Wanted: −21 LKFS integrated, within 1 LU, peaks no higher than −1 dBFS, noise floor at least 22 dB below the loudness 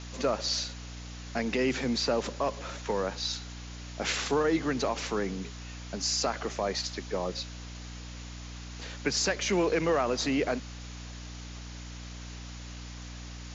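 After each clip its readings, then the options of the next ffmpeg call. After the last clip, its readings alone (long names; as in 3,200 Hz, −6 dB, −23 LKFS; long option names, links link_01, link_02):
mains hum 60 Hz; hum harmonics up to 300 Hz; level of the hum −40 dBFS; background noise floor −42 dBFS; target noise floor −53 dBFS; integrated loudness −30.5 LKFS; sample peak −15.5 dBFS; target loudness −21.0 LKFS
→ -af "bandreject=frequency=60:width_type=h:width=6,bandreject=frequency=120:width_type=h:width=6,bandreject=frequency=180:width_type=h:width=6,bandreject=frequency=240:width_type=h:width=6,bandreject=frequency=300:width_type=h:width=6"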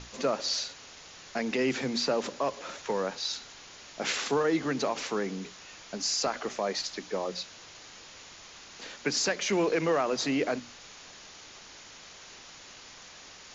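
mains hum none found; background noise floor −50 dBFS; target noise floor −53 dBFS
→ -af "afftdn=noise_reduction=6:noise_floor=-50"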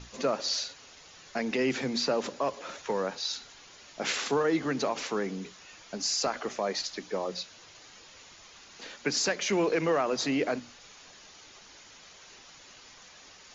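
background noise floor −53 dBFS; integrated loudness −30.5 LKFS; sample peak −16.0 dBFS; target loudness −21.0 LKFS
→ -af "volume=9.5dB"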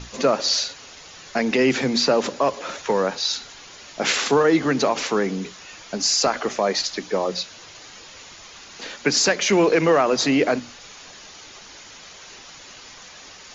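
integrated loudness −21.0 LKFS; sample peak −6.5 dBFS; background noise floor −43 dBFS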